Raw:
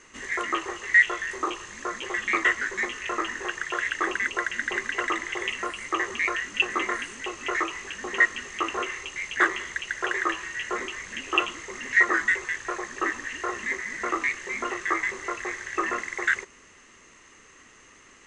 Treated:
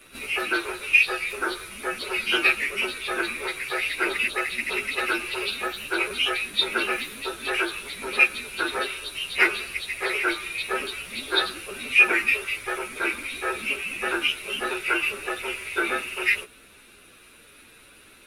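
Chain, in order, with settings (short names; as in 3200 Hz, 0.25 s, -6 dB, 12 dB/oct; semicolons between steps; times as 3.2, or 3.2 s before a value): inharmonic rescaling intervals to 113%; gain +6 dB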